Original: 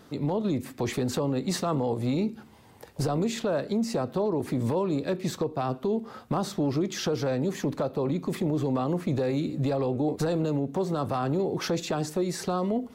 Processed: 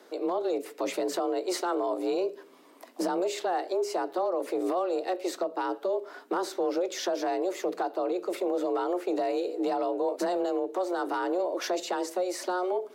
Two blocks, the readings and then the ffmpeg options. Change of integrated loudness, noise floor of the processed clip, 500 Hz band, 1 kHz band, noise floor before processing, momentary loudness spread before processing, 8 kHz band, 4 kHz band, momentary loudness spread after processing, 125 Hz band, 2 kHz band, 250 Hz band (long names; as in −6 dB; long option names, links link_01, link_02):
−1.5 dB, −54 dBFS, +1.0 dB, +2.5 dB, −52 dBFS, 3 LU, −1.5 dB, −2.0 dB, 3 LU, below −30 dB, +1.0 dB, −5.5 dB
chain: -af "afreqshift=180,acontrast=43,volume=-7.5dB"